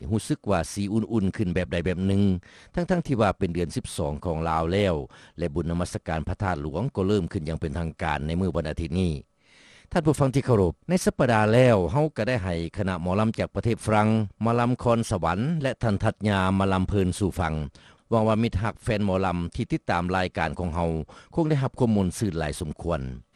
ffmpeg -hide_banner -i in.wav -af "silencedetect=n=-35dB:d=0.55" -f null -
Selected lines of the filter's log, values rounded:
silence_start: 9.21
silence_end: 9.92 | silence_duration: 0.71